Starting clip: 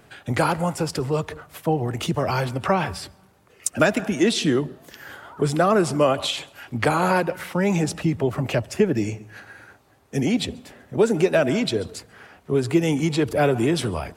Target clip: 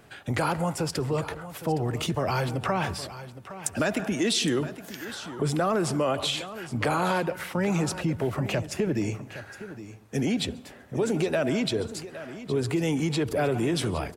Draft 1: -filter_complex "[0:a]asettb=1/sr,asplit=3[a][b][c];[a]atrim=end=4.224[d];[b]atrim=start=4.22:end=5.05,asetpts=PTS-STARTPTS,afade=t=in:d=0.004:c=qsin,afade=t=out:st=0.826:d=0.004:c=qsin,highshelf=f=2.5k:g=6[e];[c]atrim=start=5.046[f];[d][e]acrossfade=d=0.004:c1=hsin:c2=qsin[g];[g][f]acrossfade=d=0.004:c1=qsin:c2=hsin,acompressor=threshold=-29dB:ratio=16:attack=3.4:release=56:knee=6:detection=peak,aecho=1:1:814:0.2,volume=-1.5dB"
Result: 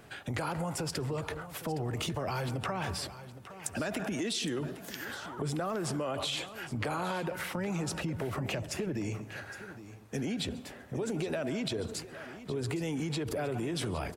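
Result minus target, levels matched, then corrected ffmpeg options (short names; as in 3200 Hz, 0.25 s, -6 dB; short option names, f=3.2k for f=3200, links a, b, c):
compressor: peak gain reduction +9.5 dB
-filter_complex "[0:a]asettb=1/sr,asplit=3[a][b][c];[a]atrim=end=4.224[d];[b]atrim=start=4.22:end=5.05,asetpts=PTS-STARTPTS,afade=t=in:d=0.004:c=qsin,afade=t=out:st=0.826:d=0.004:c=qsin,highshelf=f=2.5k:g=6[e];[c]atrim=start=5.046[f];[d][e]acrossfade=d=0.004:c1=hsin:c2=qsin[g];[g][f]acrossfade=d=0.004:c1=qsin:c2=hsin,acompressor=threshold=-19dB:ratio=16:attack=3.4:release=56:knee=6:detection=peak,aecho=1:1:814:0.2,volume=-1.5dB"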